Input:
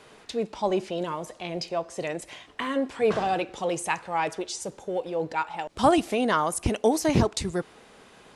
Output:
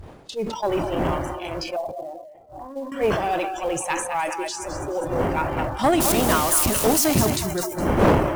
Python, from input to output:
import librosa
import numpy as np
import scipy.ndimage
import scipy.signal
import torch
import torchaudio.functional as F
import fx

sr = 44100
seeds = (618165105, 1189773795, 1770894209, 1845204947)

p1 = fx.crossing_spikes(x, sr, level_db=-16.5, at=(6.0, 7.3))
p2 = fx.dmg_wind(p1, sr, seeds[0], corner_hz=570.0, level_db=-29.0)
p3 = fx.echo_split(p2, sr, split_hz=360.0, low_ms=102, high_ms=207, feedback_pct=52, wet_db=-8.5)
p4 = fx.noise_reduce_blind(p3, sr, reduce_db=20)
p5 = fx.tube_stage(p4, sr, drive_db=11.0, bias=0.5)
p6 = fx.ladder_lowpass(p5, sr, hz=800.0, resonance_pct=75, at=(1.76, 2.92))
p7 = fx.quant_float(p6, sr, bits=2)
p8 = p6 + F.gain(torch.from_numpy(p7), -6.0).numpy()
y = fx.sustainer(p8, sr, db_per_s=53.0)